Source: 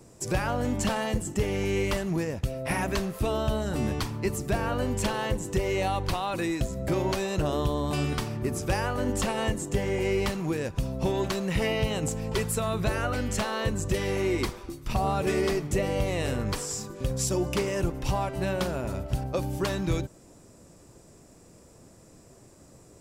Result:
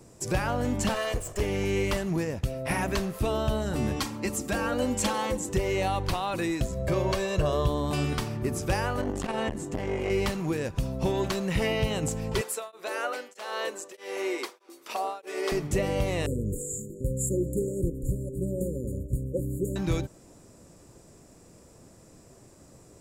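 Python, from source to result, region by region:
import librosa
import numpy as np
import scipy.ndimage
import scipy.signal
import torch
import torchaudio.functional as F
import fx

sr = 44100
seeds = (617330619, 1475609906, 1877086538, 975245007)

y = fx.chain(x, sr, fx.lower_of_two(delay_ms=1.7),
    fx.peak_eq(hz=180.0, db=-15.0, octaves=0.61), at=(0.94, 1.41))
y = fx.chain(y, sr, fx.highpass(hz=130.0, slope=6),
    fx.peak_eq(hz=7200.0, db=4.0, octaves=0.78),
    fx.comb(ms=3.7, depth=0.63), at=(3.96, 5.49))
y = fx.chain(y, sr, fx.high_shelf(hz=7600.0, db=-5.0),
    fx.comb(ms=1.8, depth=0.53), at=(6.72, 7.68))
y = fx.chain(y, sr, fx.high_shelf(hz=5800.0, db=-9.0),
    fx.doubler(ms=23.0, db=-12.5),
    fx.transformer_sat(knee_hz=410.0), at=(9.01, 10.1))
y = fx.chain(y, sr, fx.highpass(hz=380.0, slope=24),
    fx.tremolo_abs(hz=1.6), at=(12.41, 15.52))
y = fx.chain(y, sr, fx.clip_hard(threshold_db=-18.0),
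    fx.brickwall_bandstop(low_hz=570.0, high_hz=6700.0), at=(16.26, 19.76))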